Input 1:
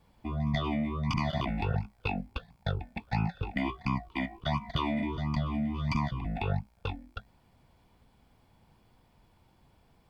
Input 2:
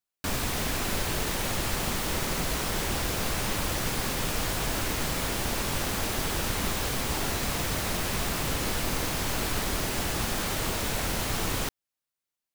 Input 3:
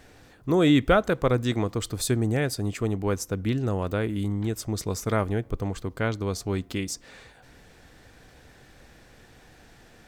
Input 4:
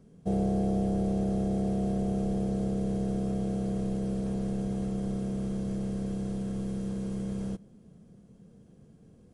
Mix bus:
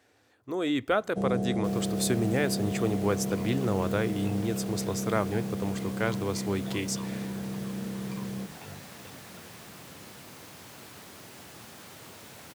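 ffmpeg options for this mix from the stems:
ffmpeg -i stem1.wav -i stem2.wav -i stem3.wav -i stem4.wav -filter_complex "[0:a]adelay=2200,volume=-14.5dB[link_01];[1:a]adelay=1400,volume=-17dB[link_02];[2:a]equalizer=frequency=160:width=2.5:gain=-15,dynaudnorm=framelen=130:gausssize=11:maxgain=11dB,volume=-10.5dB[link_03];[3:a]adelay=900,volume=-2dB[link_04];[link_01][link_02][link_03][link_04]amix=inputs=4:normalize=0,highpass=frequency=96:width=0.5412,highpass=frequency=96:width=1.3066" out.wav

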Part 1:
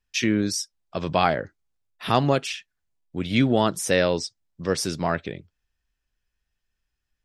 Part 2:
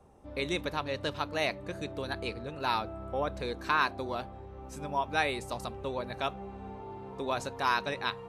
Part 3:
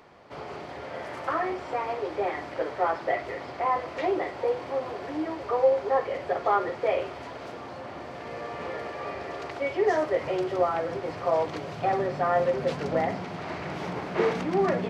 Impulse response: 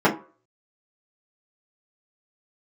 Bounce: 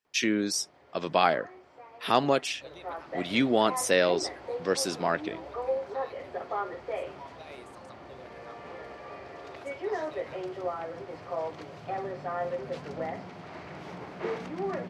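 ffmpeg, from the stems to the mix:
-filter_complex "[0:a]highpass=260,volume=-2dB[link_01];[1:a]alimiter=limit=-22.5dB:level=0:latency=1,asplit=2[link_02][link_03];[link_03]afreqshift=-1.5[link_04];[link_02][link_04]amix=inputs=2:normalize=1,adelay=2250,volume=-13dB[link_05];[2:a]adelay=50,volume=-8.5dB,afade=type=in:start_time=2.58:duration=0.67:silence=0.266073[link_06];[link_01][link_05][link_06]amix=inputs=3:normalize=0"

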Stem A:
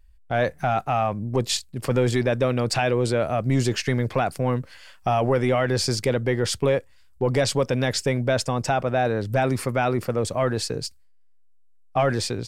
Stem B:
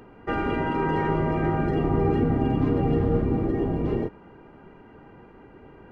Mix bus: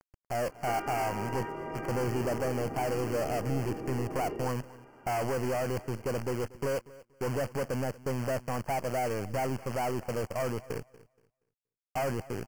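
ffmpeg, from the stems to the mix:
ffmpeg -i stem1.wav -i stem2.wav -filter_complex "[0:a]lowpass=frequency=960:width_type=q:width=1.7,acrusher=bits=5:dc=4:mix=0:aa=0.000001,asoftclip=type=tanh:threshold=-23dB,volume=-4.5dB,asplit=2[link_01][link_02];[link_02]volume=-20dB[link_03];[1:a]bass=frequency=250:gain=-14,treble=frequency=4000:gain=9,acompressor=threshold=-31dB:ratio=6,adelay=400,volume=-4dB[link_04];[link_03]aecho=0:1:237|474|711|948:1|0.23|0.0529|0.0122[link_05];[link_01][link_04][link_05]amix=inputs=3:normalize=0,asuperstop=centerf=3700:order=8:qfactor=2.9" out.wav

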